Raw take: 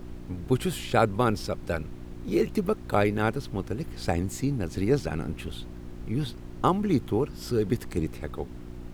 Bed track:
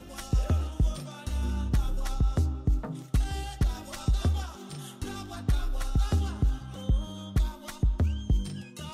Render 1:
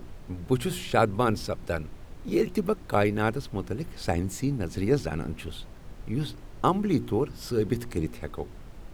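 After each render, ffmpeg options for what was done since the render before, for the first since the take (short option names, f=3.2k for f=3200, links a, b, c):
-af "bandreject=f=60:t=h:w=4,bandreject=f=120:t=h:w=4,bandreject=f=180:t=h:w=4,bandreject=f=240:t=h:w=4,bandreject=f=300:t=h:w=4,bandreject=f=360:t=h:w=4"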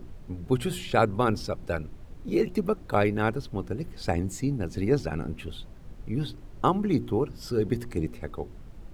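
-af "afftdn=nr=6:nf=-45"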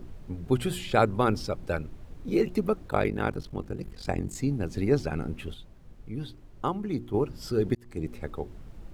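-filter_complex "[0:a]asplit=3[a][b][c];[a]afade=t=out:st=2.88:d=0.02[d];[b]aeval=exprs='val(0)*sin(2*PI*23*n/s)':c=same,afade=t=in:st=2.88:d=0.02,afade=t=out:st=4.34:d=0.02[e];[c]afade=t=in:st=4.34:d=0.02[f];[d][e][f]amix=inputs=3:normalize=0,asplit=4[g][h][i][j];[g]atrim=end=5.542[k];[h]atrim=start=5.538:end=7.142,asetpts=PTS-STARTPTS,volume=-6dB[l];[i]atrim=start=7.138:end=7.75,asetpts=PTS-STARTPTS,afade=t=out:st=0.608:d=0.004:c=hsin[m];[j]atrim=start=7.75,asetpts=PTS-STARTPTS,afade=t=in:d=0.42[n];[k][l]acrossfade=d=0.004:c1=hsin:c2=hsin[o];[m][n]concat=n=2:v=0:a=1[p];[o][p]acrossfade=d=0.004:c1=hsin:c2=hsin"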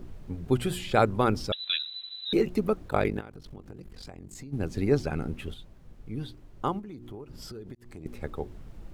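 -filter_complex "[0:a]asettb=1/sr,asplit=3[a][b][c];[a]atrim=end=1.524[d];[b]atrim=start=1.52:end=2.33,asetpts=PTS-STARTPTS,afade=t=in:d=0.004:c=qsin,afade=t=out:st=0.806:d=0.004:c=qsin,lowpass=f=3.4k:t=q:w=0.5098,lowpass=f=3.4k:t=q:w=0.6013,lowpass=f=3.4k:t=q:w=0.9,lowpass=f=3.4k:t=q:w=2.563,afreqshift=-4000[e];[c]atrim=start=2.326[f];[d][e]acrossfade=d=0.004:c1=hsin:c2=qsin[g];[g][f]acrossfade=d=0.004:c1=qsin:c2=hsin,asplit=3[h][i][j];[h]afade=t=out:st=3.19:d=0.02[k];[i]acompressor=threshold=-39dB:ratio=16:attack=3.2:release=140:knee=1:detection=peak,afade=t=in:st=3.19:d=0.02,afade=t=out:st=4.52:d=0.02[l];[j]afade=t=in:st=4.52:d=0.02[m];[k][l][m]amix=inputs=3:normalize=0,asettb=1/sr,asplit=3[n][o][p];[n]atrim=end=6.794[q];[o]atrim=start=6.79:end=8.06,asetpts=PTS-STARTPTS,afade=t=in:d=0.004:c=qsin,afade=t=out:st=1.266:d=0.004:c=qsin,acompressor=threshold=-38dB:ratio=12:attack=3.2:release=140:knee=1:detection=peak[r];[p]atrim=start=8.056[s];[q][r]acrossfade=d=0.004:c1=hsin:c2=qsin[t];[t][s]acrossfade=d=0.004:c1=qsin:c2=hsin"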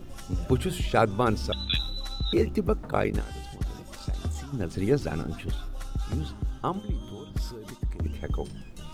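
-filter_complex "[1:a]volume=-5.5dB[a];[0:a][a]amix=inputs=2:normalize=0"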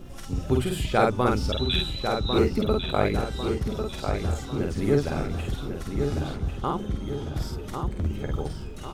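-filter_complex "[0:a]asplit=2[a][b];[b]adelay=49,volume=-2.5dB[c];[a][c]amix=inputs=2:normalize=0,asplit=2[d][e];[e]adelay=1098,lowpass=f=4k:p=1,volume=-6dB,asplit=2[f][g];[g]adelay=1098,lowpass=f=4k:p=1,volume=0.5,asplit=2[h][i];[i]adelay=1098,lowpass=f=4k:p=1,volume=0.5,asplit=2[j][k];[k]adelay=1098,lowpass=f=4k:p=1,volume=0.5,asplit=2[l][m];[m]adelay=1098,lowpass=f=4k:p=1,volume=0.5,asplit=2[n][o];[o]adelay=1098,lowpass=f=4k:p=1,volume=0.5[p];[d][f][h][j][l][n][p]amix=inputs=7:normalize=0"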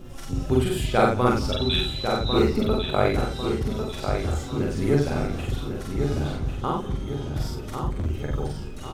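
-filter_complex "[0:a]asplit=2[a][b];[b]adelay=41,volume=-3dB[c];[a][c]amix=inputs=2:normalize=0,aecho=1:1:174:0.1"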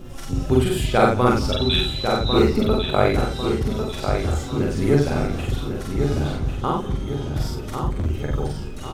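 -af "volume=3.5dB,alimiter=limit=-3dB:level=0:latency=1"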